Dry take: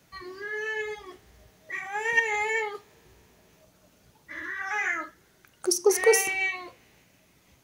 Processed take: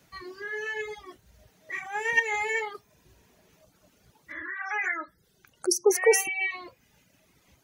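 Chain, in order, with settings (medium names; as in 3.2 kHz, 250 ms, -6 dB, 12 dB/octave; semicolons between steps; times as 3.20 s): reverb removal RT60 0.74 s; 4.32–6.51 s: spectral gate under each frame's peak -25 dB strong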